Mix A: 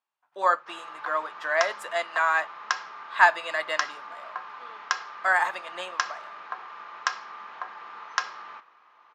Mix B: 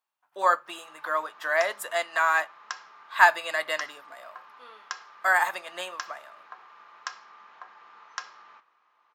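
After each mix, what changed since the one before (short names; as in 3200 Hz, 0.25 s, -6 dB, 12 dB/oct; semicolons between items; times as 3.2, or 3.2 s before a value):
background -10.0 dB; master: remove air absorption 66 m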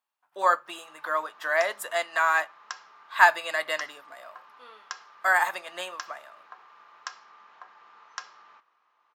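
background: send -6.0 dB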